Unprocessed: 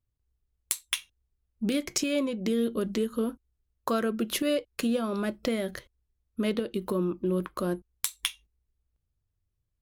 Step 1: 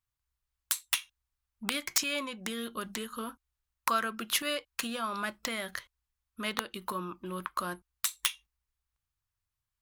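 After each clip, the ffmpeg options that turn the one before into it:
-af "aeval=exprs='(mod(7.08*val(0)+1,2)-1)/7.08':c=same,lowshelf=f=690:t=q:w=1.5:g=-12.5,volume=2dB"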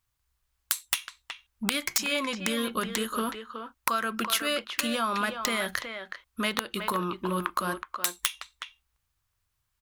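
-filter_complex "[0:a]acompressor=threshold=-33dB:ratio=6,asplit=2[a][b];[b]adelay=370,highpass=300,lowpass=3.4k,asoftclip=type=hard:threshold=-23.5dB,volume=-7dB[c];[a][c]amix=inputs=2:normalize=0,volume=9dB"

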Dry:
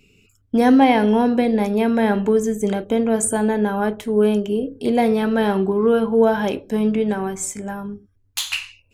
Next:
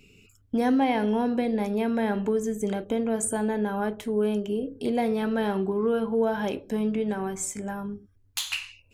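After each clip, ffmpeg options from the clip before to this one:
-af "acompressor=threshold=-37dB:ratio=1.5"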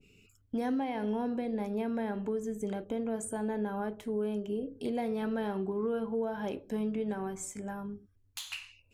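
-af "alimiter=limit=-19dB:level=0:latency=1:release=255,adynamicequalizer=threshold=0.00631:dfrequency=1600:dqfactor=0.7:tfrequency=1600:tqfactor=0.7:attack=5:release=100:ratio=0.375:range=2:mode=cutabove:tftype=highshelf,volume=-6dB"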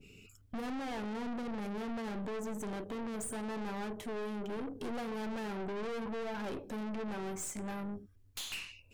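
-af "aeval=exprs='(tanh(158*val(0)+0.4)-tanh(0.4))/158':c=same,volume=6.5dB"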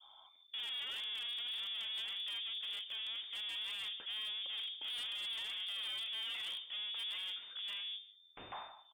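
-af "aecho=1:1:152:0.133,lowpass=f=3.1k:t=q:w=0.5098,lowpass=f=3.1k:t=q:w=0.6013,lowpass=f=3.1k:t=q:w=0.9,lowpass=f=3.1k:t=q:w=2.563,afreqshift=-3600,aeval=exprs='0.0251*(abs(mod(val(0)/0.0251+3,4)-2)-1)':c=same,volume=-3.5dB"

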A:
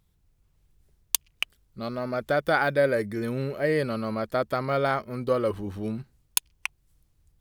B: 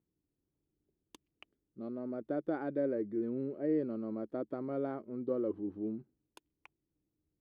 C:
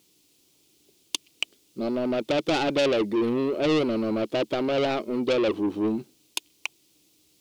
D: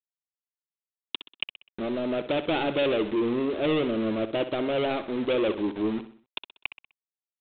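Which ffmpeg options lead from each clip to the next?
-af "bandpass=f=310:t=q:w=3.3:csg=0"
-filter_complex "[0:a]asplit=2[a][b];[b]highpass=f=720:p=1,volume=24dB,asoftclip=type=tanh:threshold=-21.5dB[c];[a][c]amix=inputs=2:normalize=0,lowpass=f=1.6k:p=1,volume=-6dB,aexciter=amount=10.3:drive=4.1:freq=2.5k,volume=6dB"
-af "aresample=8000,aeval=exprs='val(0)*gte(abs(val(0)),0.0237)':c=same,aresample=44100,aecho=1:1:63|126|189|252:0.251|0.108|0.0464|0.02,volume=-2dB"

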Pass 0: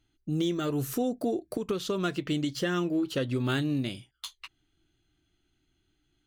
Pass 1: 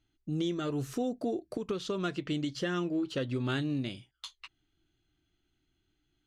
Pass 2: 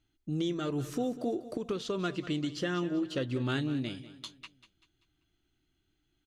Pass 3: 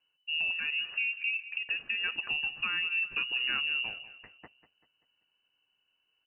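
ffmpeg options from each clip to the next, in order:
-af "lowpass=7.2k,volume=-3.5dB"
-af "aecho=1:1:194|388|582|776:0.178|0.0782|0.0344|0.0151"
-af "lowpass=f=2.6k:t=q:w=0.5098,lowpass=f=2.6k:t=q:w=0.6013,lowpass=f=2.6k:t=q:w=0.9,lowpass=f=2.6k:t=q:w=2.563,afreqshift=-3000"

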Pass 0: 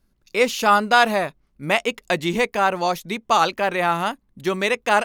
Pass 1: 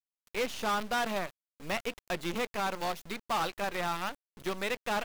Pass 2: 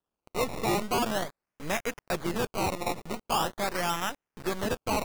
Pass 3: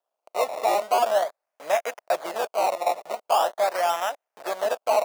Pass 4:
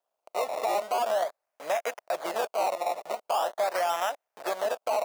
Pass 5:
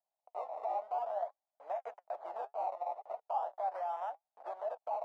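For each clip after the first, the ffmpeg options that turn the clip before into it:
-filter_complex "[0:a]acrusher=bits=4:dc=4:mix=0:aa=0.000001,acrossover=split=5500[a][b];[b]acompressor=threshold=-35dB:ratio=4:attack=1:release=60[c];[a][c]amix=inputs=2:normalize=0,asoftclip=type=tanh:threshold=-18.5dB,volume=-7.5dB"
-filter_complex "[0:a]asplit=2[a][b];[b]alimiter=level_in=10dB:limit=-24dB:level=0:latency=1:release=139,volume=-10dB,volume=1.5dB[c];[a][c]amix=inputs=2:normalize=0,acrusher=samples=19:mix=1:aa=0.000001:lfo=1:lforange=19:lforate=0.43"
-af "highpass=f=640:t=q:w=4.9"
-af "alimiter=limit=-18.5dB:level=0:latency=1:release=84"
-af "bandpass=f=790:t=q:w=3.3:csg=0,flanger=delay=1.4:depth=7.2:regen=64:speed=0.64:shape=triangular,volume=-2dB"

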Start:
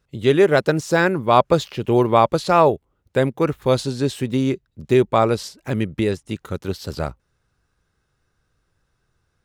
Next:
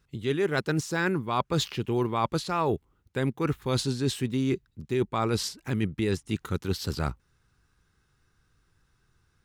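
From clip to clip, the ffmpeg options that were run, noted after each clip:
-af "equalizer=f=590:t=o:w=0.67:g=-10,areverse,acompressor=threshold=-25dB:ratio=6,areverse,volume=1.5dB"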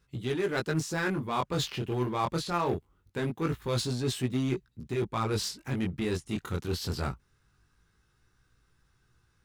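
-filter_complex "[0:a]flanger=delay=16:depth=7.7:speed=0.23,asplit=2[a][b];[b]aeval=exprs='0.02*(abs(mod(val(0)/0.02+3,4)-2)-1)':c=same,volume=-9dB[c];[a][c]amix=inputs=2:normalize=0"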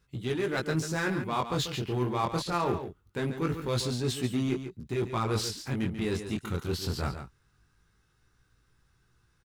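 -af "aecho=1:1:140:0.335"

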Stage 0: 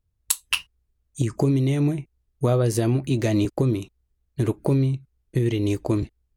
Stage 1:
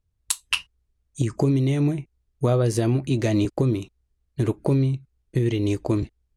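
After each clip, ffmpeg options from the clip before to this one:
-af "lowpass=9.8k"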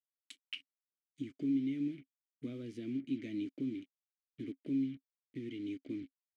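-filter_complex "[0:a]acrusher=bits=5:mix=0:aa=0.5,asplit=3[a][b][c];[a]bandpass=f=270:t=q:w=8,volume=0dB[d];[b]bandpass=f=2.29k:t=q:w=8,volume=-6dB[e];[c]bandpass=f=3.01k:t=q:w=8,volume=-9dB[f];[d][e][f]amix=inputs=3:normalize=0,volume=-7dB"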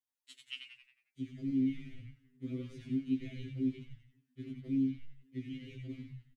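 -filter_complex "[0:a]asplit=2[a][b];[b]asplit=6[c][d][e][f][g][h];[c]adelay=90,afreqshift=-90,volume=-4.5dB[i];[d]adelay=180,afreqshift=-180,volume=-11.2dB[j];[e]adelay=270,afreqshift=-270,volume=-18dB[k];[f]adelay=360,afreqshift=-360,volume=-24.7dB[l];[g]adelay=450,afreqshift=-450,volume=-31.5dB[m];[h]adelay=540,afreqshift=-540,volume=-38.2dB[n];[i][j][k][l][m][n]amix=inputs=6:normalize=0[o];[a][o]amix=inputs=2:normalize=0,afftfilt=real='re*2.45*eq(mod(b,6),0)':imag='im*2.45*eq(mod(b,6),0)':win_size=2048:overlap=0.75,volume=1dB"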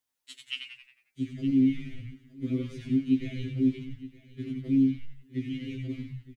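-af "aecho=1:1:917:0.126,volume=8.5dB"

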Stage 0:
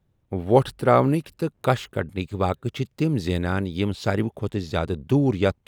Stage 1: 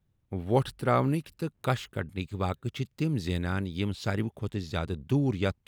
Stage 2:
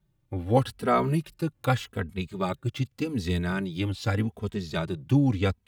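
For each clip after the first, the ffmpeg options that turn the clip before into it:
-af "equalizer=f=550:t=o:w=2:g=-5.5,volume=-4dB"
-filter_complex "[0:a]asplit=2[a][b];[b]adelay=2.8,afreqshift=-0.84[c];[a][c]amix=inputs=2:normalize=1,volume=5.5dB"

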